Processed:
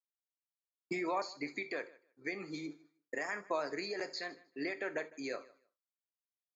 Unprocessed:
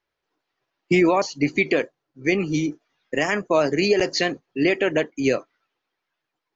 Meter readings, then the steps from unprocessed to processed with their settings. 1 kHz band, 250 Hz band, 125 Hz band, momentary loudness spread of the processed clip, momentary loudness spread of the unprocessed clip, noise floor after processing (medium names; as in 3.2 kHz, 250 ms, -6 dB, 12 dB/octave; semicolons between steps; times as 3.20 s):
-13.5 dB, -20.5 dB, -26.0 dB, 8 LU, 7 LU, under -85 dBFS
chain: expander -44 dBFS; differentiator; compression 2.5:1, threshold -41 dBFS, peak gain reduction 11 dB; boxcar filter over 15 samples; on a send: feedback delay 155 ms, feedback 17%, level -22 dB; on the sum: gated-style reverb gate 90 ms flat, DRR 12 dB; trim +10.5 dB